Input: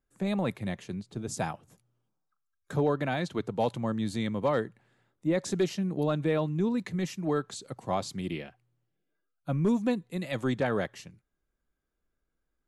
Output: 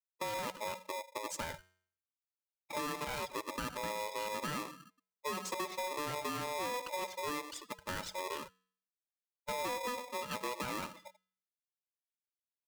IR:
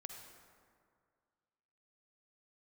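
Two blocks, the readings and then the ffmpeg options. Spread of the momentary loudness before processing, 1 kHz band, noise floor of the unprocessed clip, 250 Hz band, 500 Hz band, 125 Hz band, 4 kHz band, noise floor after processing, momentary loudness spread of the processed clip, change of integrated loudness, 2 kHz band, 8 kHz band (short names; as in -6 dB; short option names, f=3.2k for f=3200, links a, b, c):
10 LU, -1.5 dB, -82 dBFS, -17.0 dB, -10.5 dB, -19.0 dB, -0.5 dB, under -85 dBFS, 7 LU, -8.5 dB, -2.5 dB, 0.0 dB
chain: -filter_complex "[0:a]acrusher=bits=2:mode=log:mix=0:aa=0.000001,aeval=exprs='0.15*(cos(1*acos(clip(val(0)/0.15,-1,1)))-cos(1*PI/2))+0.0376*(cos(2*acos(clip(val(0)/0.15,-1,1)))-cos(2*PI/2))+0.0106*(cos(5*acos(clip(val(0)/0.15,-1,1)))-cos(5*PI/2))+0.00335*(cos(7*acos(clip(val(0)/0.15,-1,1)))-cos(7*PI/2))+0.00211*(cos(8*acos(clip(val(0)/0.15,-1,1)))-cos(8*PI/2))':c=same,lowshelf=f=310:g=-3.5,aecho=1:1:62|124|186:0.1|0.043|0.0185,asplit=2[a][b];[1:a]atrim=start_sample=2205,adelay=99[c];[b][c]afir=irnorm=-1:irlink=0,volume=-11.5dB[d];[a][d]amix=inputs=2:normalize=0,aeval=exprs='0.2*(cos(1*acos(clip(val(0)/0.2,-1,1)))-cos(1*PI/2))+0.0282*(cos(5*acos(clip(val(0)/0.2,-1,1)))-cos(5*PI/2))':c=same,afftfilt=real='re*gte(hypot(re,im),0.0398)':imag='im*gte(hypot(re,im),0.0398)':win_size=1024:overlap=0.75,equalizer=f=710:t=o:w=0.35:g=-10.5,bandreject=f=276.4:t=h:w=4,bandreject=f=552.8:t=h:w=4,bandreject=f=829.2:t=h:w=4,bandreject=f=1.1056k:t=h:w=4,bandreject=f=1.382k:t=h:w=4,bandreject=f=1.6584k:t=h:w=4,bandreject=f=1.9348k:t=h:w=4,bandreject=f=2.2112k:t=h:w=4,bandreject=f=2.4876k:t=h:w=4,bandreject=f=2.764k:t=h:w=4,bandreject=f=3.0404k:t=h:w=4,bandreject=f=3.3168k:t=h:w=4,bandreject=f=3.5932k:t=h:w=4,bandreject=f=3.8696k:t=h:w=4,bandreject=f=4.146k:t=h:w=4,bandreject=f=4.4224k:t=h:w=4,bandreject=f=4.6988k:t=h:w=4,bandreject=f=4.9752k:t=h:w=4,bandreject=f=5.2516k:t=h:w=4,bandreject=f=5.528k:t=h:w=4,bandreject=f=5.8044k:t=h:w=4,bandreject=f=6.0808k:t=h:w=4,bandreject=f=6.3572k:t=h:w=4,bandreject=f=6.6336k:t=h:w=4,bandreject=f=6.91k:t=h:w=4,bandreject=f=7.1864k:t=h:w=4,bandreject=f=7.4628k:t=h:w=4,bandreject=f=7.7392k:t=h:w=4,acompressor=threshold=-28dB:ratio=8,aeval=exprs='val(0)*sgn(sin(2*PI*740*n/s))':c=same,volume=-7dB"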